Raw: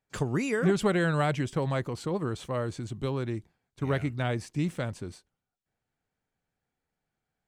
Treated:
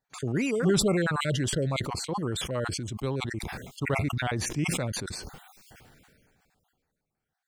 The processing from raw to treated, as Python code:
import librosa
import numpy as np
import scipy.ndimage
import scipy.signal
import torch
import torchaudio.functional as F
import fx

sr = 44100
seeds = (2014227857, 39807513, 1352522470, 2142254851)

y = fx.spec_dropout(x, sr, seeds[0], share_pct=35)
y = fx.sustainer(y, sr, db_per_s=25.0)